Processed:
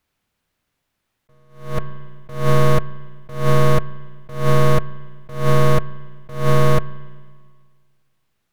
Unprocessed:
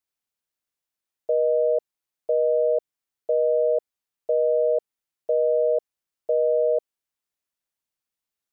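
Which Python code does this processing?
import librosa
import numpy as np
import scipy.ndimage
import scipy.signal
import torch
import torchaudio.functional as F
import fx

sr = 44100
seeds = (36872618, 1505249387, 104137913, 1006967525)

p1 = fx.tracing_dist(x, sr, depth_ms=0.43)
p2 = fx.fold_sine(p1, sr, drive_db=20, ceiling_db=-14.0)
p3 = p1 + (p2 * 10.0 ** (-7.5 / 20.0))
p4 = fx.bass_treble(p3, sr, bass_db=9, treble_db=-10)
p5 = fx.rev_spring(p4, sr, rt60_s=1.8, pass_ms=(36, 55), chirp_ms=75, drr_db=19.0)
y = fx.attack_slew(p5, sr, db_per_s=120.0)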